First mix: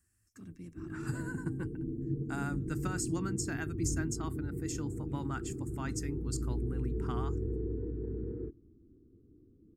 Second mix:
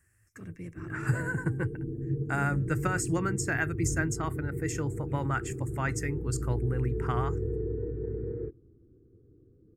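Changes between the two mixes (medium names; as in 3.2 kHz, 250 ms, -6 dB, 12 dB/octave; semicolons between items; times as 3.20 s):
speech +4.5 dB; master: add graphic EQ 125/250/500/2000/4000 Hz +7/-7/+10/+11/-8 dB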